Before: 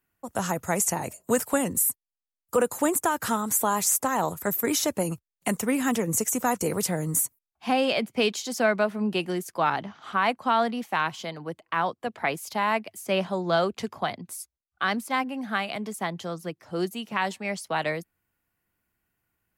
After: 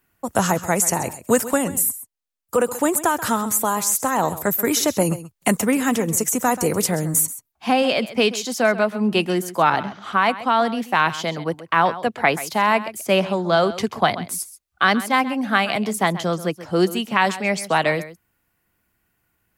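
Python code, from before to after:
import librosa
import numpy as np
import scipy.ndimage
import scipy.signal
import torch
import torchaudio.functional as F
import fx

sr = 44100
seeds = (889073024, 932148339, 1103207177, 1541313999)

p1 = fx.rider(x, sr, range_db=4, speed_s=0.5)
p2 = p1 + fx.echo_single(p1, sr, ms=132, db=-15.0, dry=0)
y = p2 * librosa.db_to_amplitude(6.5)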